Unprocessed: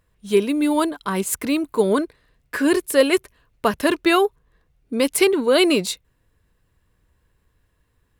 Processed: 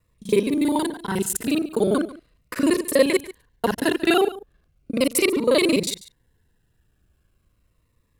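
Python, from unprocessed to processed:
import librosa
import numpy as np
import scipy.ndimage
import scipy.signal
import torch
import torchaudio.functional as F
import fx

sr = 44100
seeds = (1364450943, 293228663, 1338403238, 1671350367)

y = fx.local_reverse(x, sr, ms=36.0)
y = y + 10.0 ** (-18.0 / 20.0) * np.pad(y, (int(142 * sr / 1000.0), 0))[:len(y)]
y = fx.notch_cascade(y, sr, direction='falling', hz=0.38)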